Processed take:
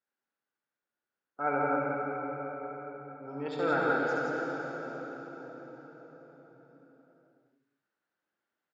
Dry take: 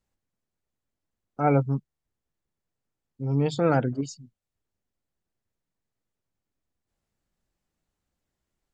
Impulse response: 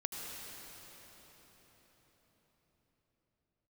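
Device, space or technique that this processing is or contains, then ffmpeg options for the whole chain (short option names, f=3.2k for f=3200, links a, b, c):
station announcement: -filter_complex "[0:a]highpass=340,lowpass=4k,equalizer=f=1.5k:t=o:w=0.47:g=11,aecho=1:1:69.97|169.1:0.631|0.708[a];[1:a]atrim=start_sample=2205[b];[a][b]afir=irnorm=-1:irlink=0,volume=-7dB"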